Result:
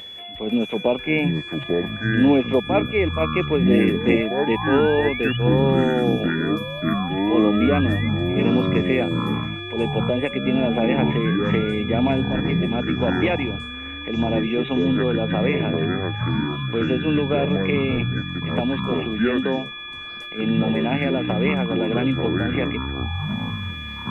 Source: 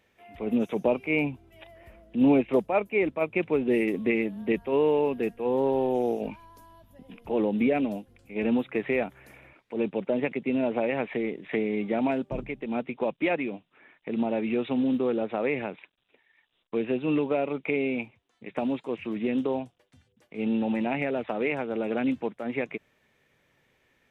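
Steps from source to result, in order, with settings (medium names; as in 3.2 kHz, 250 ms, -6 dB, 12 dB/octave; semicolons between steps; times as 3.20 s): upward compressor, threshold -41 dBFS; whistle 3.4 kHz -39 dBFS; painted sound rise, 3.58–5.37 s, 250–3000 Hz -35 dBFS; ever faster or slower copies 495 ms, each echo -6 st, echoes 3; trim +4 dB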